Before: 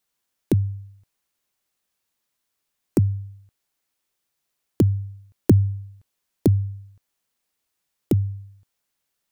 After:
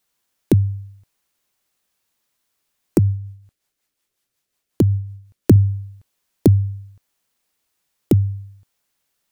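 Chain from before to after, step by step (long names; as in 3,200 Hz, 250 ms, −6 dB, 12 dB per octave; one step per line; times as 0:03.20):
0:02.98–0:05.56: rotating-speaker cabinet horn 5.5 Hz
level +5 dB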